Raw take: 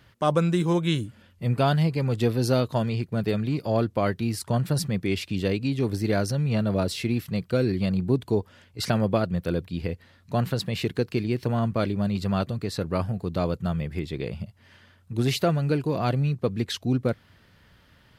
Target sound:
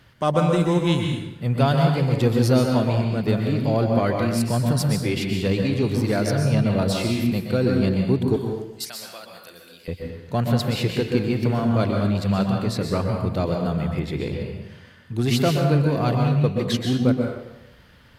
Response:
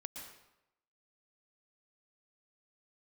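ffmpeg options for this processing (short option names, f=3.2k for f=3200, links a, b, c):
-filter_complex "[0:a]asettb=1/sr,asplit=3[a][b][c];[a]atrim=end=8.364[d];[b]atrim=start=8.36:end=9.88,asetpts=PTS-STARTPTS,afade=t=in:d=0.004:c=qsin,afade=t=out:st=1.516:d=0.004:c=qsin,aderivative[e];[c]atrim=start=9.876[f];[d][e]acrossfade=d=0.004:c1=hsin:c2=qsin[g];[g][f]acrossfade=d=0.004:c1=qsin:c2=hsin,asplit=2[h][i];[i]asoftclip=type=tanh:threshold=-27.5dB,volume=-8.5dB[j];[h][j]amix=inputs=2:normalize=0[k];[1:a]atrim=start_sample=2205,asetrate=41013,aresample=44100[l];[k][l]afir=irnorm=-1:irlink=0,volume=5dB"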